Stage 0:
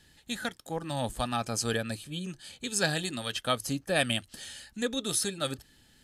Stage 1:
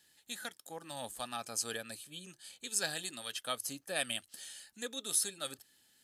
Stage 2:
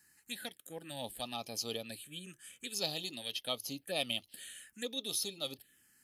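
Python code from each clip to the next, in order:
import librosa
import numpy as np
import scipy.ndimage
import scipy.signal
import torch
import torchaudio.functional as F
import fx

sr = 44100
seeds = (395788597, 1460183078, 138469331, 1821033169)

y1 = fx.highpass(x, sr, hz=460.0, slope=6)
y1 = fx.high_shelf(y1, sr, hz=7300.0, db=11.5)
y1 = y1 * 10.0 ** (-8.5 / 20.0)
y2 = fx.env_phaser(y1, sr, low_hz=580.0, high_hz=1600.0, full_db=-37.0)
y2 = y2 * 10.0 ** (3.5 / 20.0)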